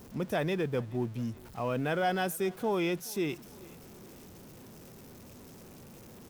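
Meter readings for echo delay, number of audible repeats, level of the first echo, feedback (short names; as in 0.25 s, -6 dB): 0.424 s, 2, -23.5 dB, 43%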